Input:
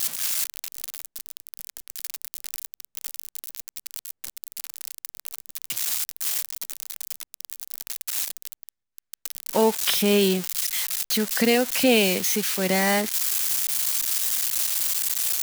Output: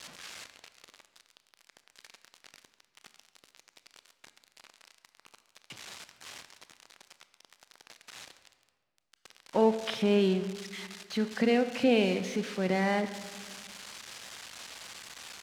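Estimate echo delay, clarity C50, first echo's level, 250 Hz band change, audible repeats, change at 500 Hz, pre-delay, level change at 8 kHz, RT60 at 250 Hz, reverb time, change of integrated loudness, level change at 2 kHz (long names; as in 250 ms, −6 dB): 138 ms, 11.5 dB, −19.5 dB, −4.0 dB, 1, −4.5 dB, 23 ms, −22.0 dB, 2.2 s, 1.7 s, −7.5 dB, −9.0 dB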